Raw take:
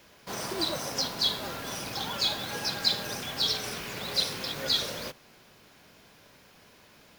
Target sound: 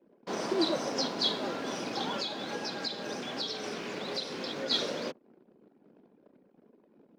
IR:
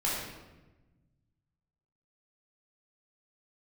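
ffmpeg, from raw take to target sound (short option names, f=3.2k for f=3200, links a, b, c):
-filter_complex "[0:a]equalizer=f=250:t=o:w=2.7:g=11.5,asettb=1/sr,asplit=3[a][b][c];[a]atrim=end=2.184[d];[b]atrim=start=2.18:end=4.71,asetpts=PTS-STARTPTS,afade=t=in:d=0.004:c=qsin,afade=t=out:st=2.526:d=0.004:c=qsin,acompressor=threshold=-28dB:ratio=10[e];[c]atrim=start=4.706[f];[d][e]acrossfade=d=0.004:c1=hsin:c2=qsin[g];[g][f]acrossfade=d=0.004:c1=qsin:c2=hsin,anlmdn=0.0251,acrossover=split=210 7200:gain=0.112 1 0.0708[h][i][j];[h][i][j]amix=inputs=3:normalize=0,volume=-2.5dB"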